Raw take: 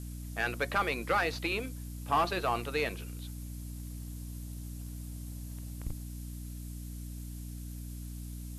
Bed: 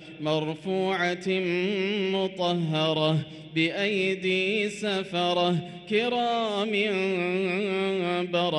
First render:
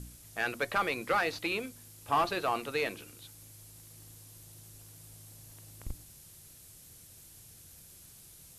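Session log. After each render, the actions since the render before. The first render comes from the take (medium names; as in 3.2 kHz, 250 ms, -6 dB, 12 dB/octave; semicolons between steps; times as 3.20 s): de-hum 60 Hz, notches 5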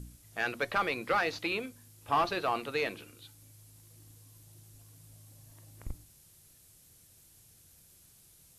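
noise print and reduce 6 dB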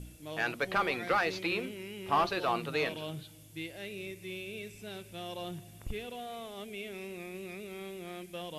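add bed -16.5 dB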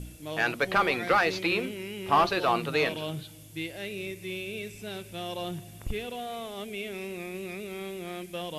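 trim +5.5 dB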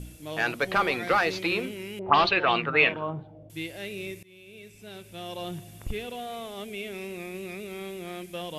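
1.99–3.50 s: touch-sensitive low-pass 540–4100 Hz up, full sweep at -19 dBFS; 4.23–5.57 s: fade in linear, from -23 dB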